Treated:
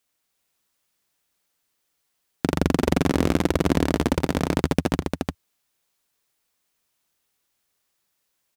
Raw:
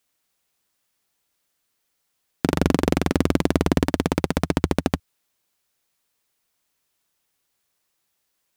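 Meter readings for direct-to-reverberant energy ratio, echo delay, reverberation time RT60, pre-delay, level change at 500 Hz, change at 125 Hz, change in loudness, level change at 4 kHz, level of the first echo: no reverb audible, 85 ms, no reverb audible, no reverb audible, −0.5 dB, −0.5 dB, −1.0 dB, −0.5 dB, −17.5 dB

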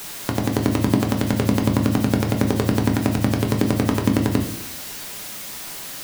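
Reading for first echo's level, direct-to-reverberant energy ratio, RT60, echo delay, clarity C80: no echo audible, 2.0 dB, 0.70 s, no echo audible, 12.0 dB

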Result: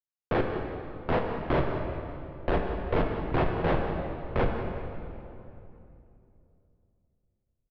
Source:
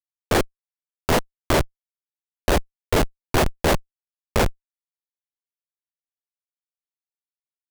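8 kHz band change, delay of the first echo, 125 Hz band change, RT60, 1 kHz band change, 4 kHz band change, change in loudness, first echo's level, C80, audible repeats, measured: below −40 dB, 187 ms, −4.0 dB, 2.8 s, −5.5 dB, −15.5 dB, −7.0 dB, −13.5 dB, 4.0 dB, 1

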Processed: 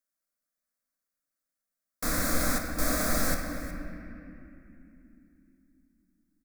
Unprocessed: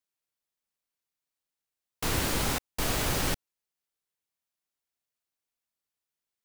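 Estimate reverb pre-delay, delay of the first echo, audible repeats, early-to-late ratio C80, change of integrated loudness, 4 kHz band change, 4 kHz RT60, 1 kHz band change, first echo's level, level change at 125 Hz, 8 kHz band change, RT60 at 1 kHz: 4 ms, 365 ms, 1, 4.5 dB, 0.0 dB, −4.5 dB, 1.9 s, 0.0 dB, −16.0 dB, −2.5 dB, +1.0 dB, 2.5 s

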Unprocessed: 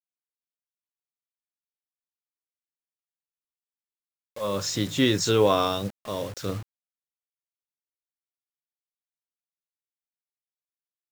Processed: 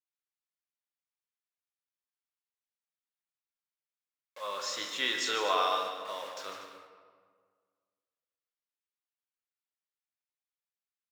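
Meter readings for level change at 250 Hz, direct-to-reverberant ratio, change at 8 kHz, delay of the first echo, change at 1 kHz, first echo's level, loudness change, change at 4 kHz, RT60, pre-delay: −21.0 dB, 2.0 dB, −7.5 dB, 149 ms, −2.0 dB, −9.5 dB, −6.5 dB, −3.5 dB, 1.7 s, 11 ms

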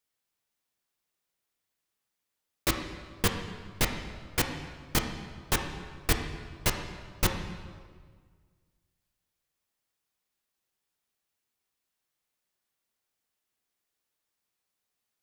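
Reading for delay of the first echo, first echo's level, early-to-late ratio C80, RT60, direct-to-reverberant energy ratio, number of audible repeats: no echo audible, no echo audible, 8.0 dB, 1.7 s, 3.5 dB, no echo audible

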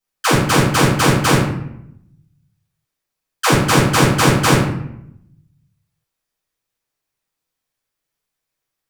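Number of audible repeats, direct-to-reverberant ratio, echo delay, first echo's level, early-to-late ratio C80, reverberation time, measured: no echo audible, −9.5 dB, no echo audible, no echo audible, 6.5 dB, 0.75 s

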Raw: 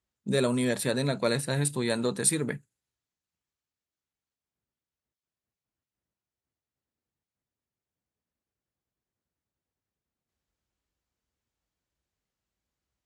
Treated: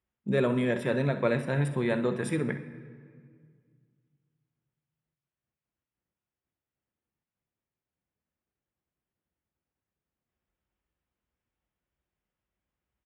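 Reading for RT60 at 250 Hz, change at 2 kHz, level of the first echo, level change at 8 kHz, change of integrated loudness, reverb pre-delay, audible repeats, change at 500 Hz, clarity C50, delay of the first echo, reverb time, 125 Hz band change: 2.6 s, +0.5 dB, −13.5 dB, −19.0 dB, −1.0 dB, 5 ms, 1, +0.5 dB, 9.5 dB, 64 ms, 2.0 s, +1.5 dB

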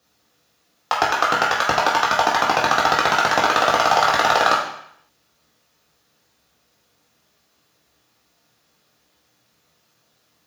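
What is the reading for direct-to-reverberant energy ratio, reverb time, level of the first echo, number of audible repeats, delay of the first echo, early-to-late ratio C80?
−4.5 dB, 0.70 s, no echo audible, no echo audible, no echo audible, 8.0 dB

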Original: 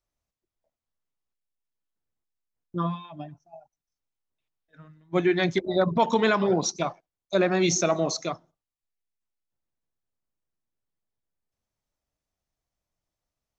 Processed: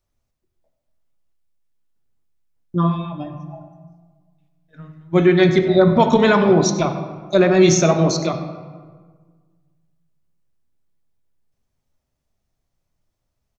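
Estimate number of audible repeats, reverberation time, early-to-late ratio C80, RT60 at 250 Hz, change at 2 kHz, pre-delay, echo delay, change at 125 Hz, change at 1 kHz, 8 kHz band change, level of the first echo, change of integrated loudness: 1, 1.5 s, 9.0 dB, 1.8 s, +6.5 dB, 5 ms, 96 ms, +12.5 dB, +6.5 dB, can't be measured, −16.0 dB, +9.0 dB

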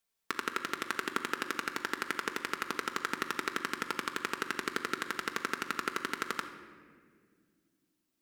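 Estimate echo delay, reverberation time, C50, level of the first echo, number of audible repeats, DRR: no echo audible, 2.0 s, 9.0 dB, no echo audible, no echo audible, 4.0 dB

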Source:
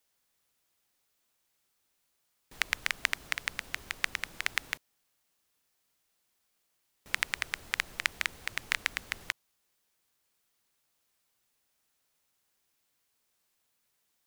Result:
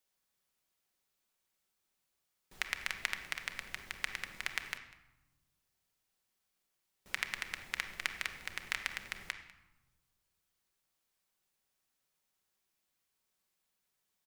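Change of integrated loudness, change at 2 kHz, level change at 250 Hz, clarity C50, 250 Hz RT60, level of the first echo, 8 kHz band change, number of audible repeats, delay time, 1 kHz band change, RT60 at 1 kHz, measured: −5.5 dB, −5.5 dB, −4.5 dB, 9.0 dB, 1.6 s, −21.0 dB, −6.0 dB, 1, 197 ms, −5.5 dB, 1.0 s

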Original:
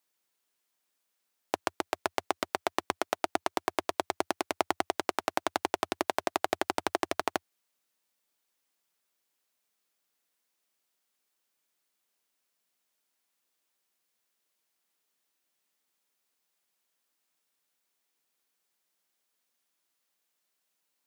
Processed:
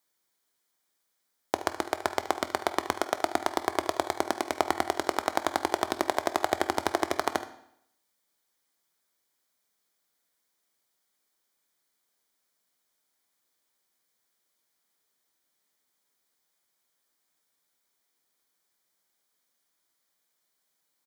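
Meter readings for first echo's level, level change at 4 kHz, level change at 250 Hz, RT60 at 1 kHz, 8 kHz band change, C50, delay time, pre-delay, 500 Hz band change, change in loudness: −14.0 dB, +2.0 dB, +3.5 dB, 0.70 s, +3.0 dB, 11.0 dB, 74 ms, 14 ms, +3.0 dB, +3.0 dB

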